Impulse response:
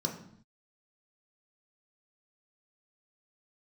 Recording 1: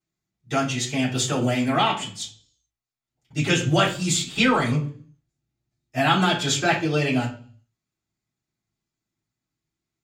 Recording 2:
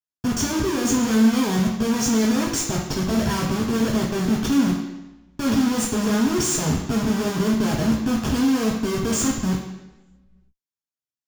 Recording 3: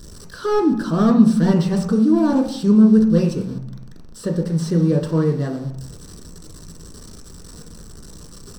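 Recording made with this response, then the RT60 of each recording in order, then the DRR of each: 3; 0.45 s, 1.0 s, not exponential; -11.0, -2.5, 1.0 dB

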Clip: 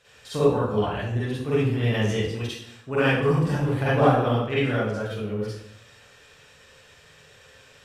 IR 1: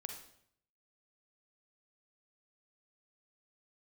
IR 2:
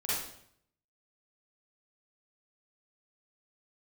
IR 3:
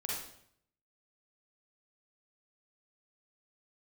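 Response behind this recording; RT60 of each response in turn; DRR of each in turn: 2; 0.65, 0.65, 0.65 s; 4.0, -10.5, -4.5 dB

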